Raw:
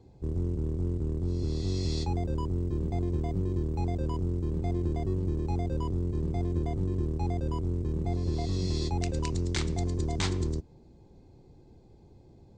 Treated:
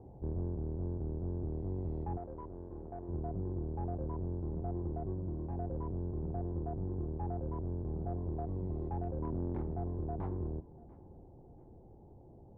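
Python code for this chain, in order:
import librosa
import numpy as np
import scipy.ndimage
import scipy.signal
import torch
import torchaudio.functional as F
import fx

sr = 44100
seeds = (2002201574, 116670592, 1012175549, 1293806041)

y = fx.law_mismatch(x, sr, coded='mu')
y = fx.ladder_lowpass(y, sr, hz=960.0, resonance_pct=40)
y = fx.rider(y, sr, range_db=10, speed_s=0.5)
y = fx.peak_eq(y, sr, hz=250.0, db=7.0, octaves=1.1, at=(9.21, 9.62))
y = 10.0 ** (-27.5 / 20.0) * np.tanh(y / 10.0 ** (-27.5 / 20.0))
y = fx.peak_eq(y, sr, hz=110.0, db=-12.5, octaves=2.9, at=(2.17, 3.09))
y = fx.notch_comb(y, sr, f0_hz=430.0, at=(5.12, 5.58))
y = fx.echo_feedback(y, sr, ms=691, feedback_pct=32, wet_db=-21)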